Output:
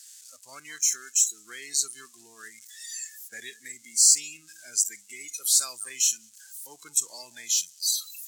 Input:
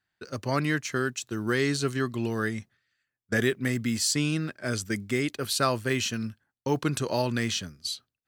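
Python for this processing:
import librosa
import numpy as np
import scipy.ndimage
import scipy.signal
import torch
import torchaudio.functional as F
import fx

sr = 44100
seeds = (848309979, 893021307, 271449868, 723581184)

p1 = x + 0.5 * 10.0 ** (-17.5 / 20.0) * np.diff(np.sign(x), prepend=np.sign(x[:1]))
p2 = p1 + fx.echo_single(p1, sr, ms=190, db=-15.5, dry=0)
p3 = fx.noise_reduce_blind(p2, sr, reduce_db=20)
p4 = fx.bandpass_q(p3, sr, hz=7200.0, q=2.5)
y = p4 * 10.0 ** (8.0 / 20.0)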